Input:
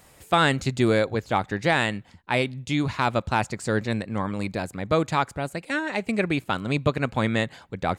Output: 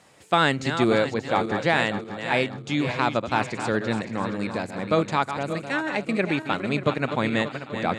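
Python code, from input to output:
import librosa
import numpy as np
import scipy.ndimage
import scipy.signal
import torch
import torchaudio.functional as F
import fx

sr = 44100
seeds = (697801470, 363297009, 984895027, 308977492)

y = fx.reverse_delay_fb(x, sr, ms=292, feedback_pct=61, wet_db=-8.5)
y = fx.bandpass_edges(y, sr, low_hz=140.0, high_hz=7200.0)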